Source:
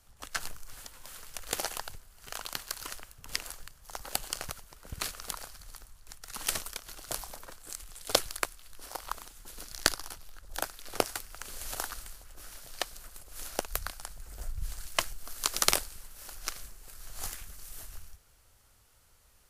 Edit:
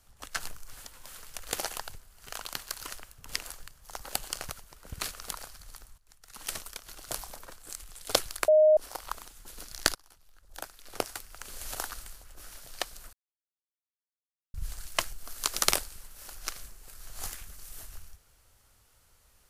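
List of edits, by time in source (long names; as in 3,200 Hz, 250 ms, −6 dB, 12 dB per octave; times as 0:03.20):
0:05.98–0:07.05: fade in, from −15.5 dB
0:08.48–0:08.77: beep over 618 Hz −16 dBFS
0:09.95–0:11.65: fade in, from −21.5 dB
0:13.13–0:14.54: silence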